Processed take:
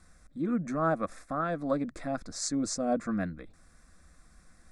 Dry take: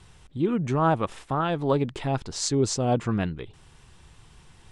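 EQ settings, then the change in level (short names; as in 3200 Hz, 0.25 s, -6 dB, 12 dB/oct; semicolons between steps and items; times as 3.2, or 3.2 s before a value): fixed phaser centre 600 Hz, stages 8; -2.5 dB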